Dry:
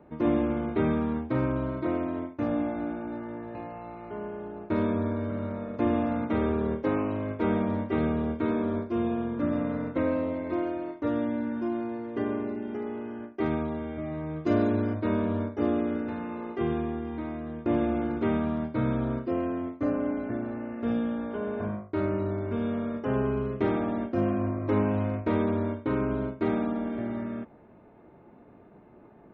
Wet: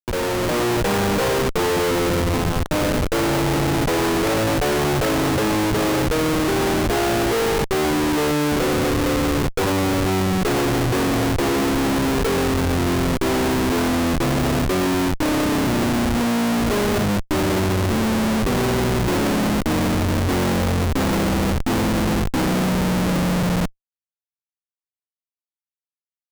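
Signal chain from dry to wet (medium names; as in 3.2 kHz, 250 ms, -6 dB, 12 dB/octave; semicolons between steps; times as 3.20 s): gliding tape speed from 156% -> 67%; Schmitt trigger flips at -35.5 dBFS; level rider gain up to 3 dB; trim +7 dB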